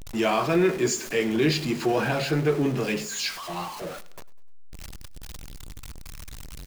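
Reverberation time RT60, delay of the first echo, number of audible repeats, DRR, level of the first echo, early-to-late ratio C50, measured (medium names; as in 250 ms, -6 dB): no reverb, 100 ms, 3, no reverb, -20.0 dB, no reverb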